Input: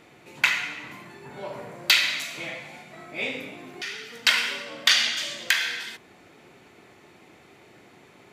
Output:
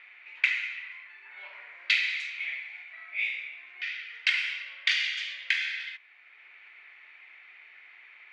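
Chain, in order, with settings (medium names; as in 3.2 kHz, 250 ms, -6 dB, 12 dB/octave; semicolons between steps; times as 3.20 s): ladder band-pass 2.5 kHz, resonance 55%; level-controlled noise filter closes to 2.1 kHz, open at -28.5 dBFS; three bands compressed up and down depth 40%; trim +5.5 dB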